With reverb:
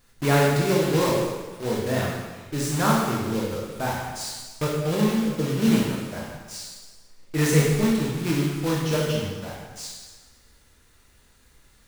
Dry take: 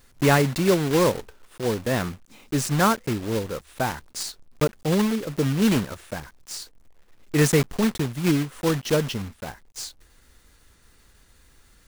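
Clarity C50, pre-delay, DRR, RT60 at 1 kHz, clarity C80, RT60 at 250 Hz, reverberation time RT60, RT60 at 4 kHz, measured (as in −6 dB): 0.0 dB, 8 ms, −4.0 dB, 1.3 s, 2.5 dB, 1.3 s, 1.3 s, 1.2 s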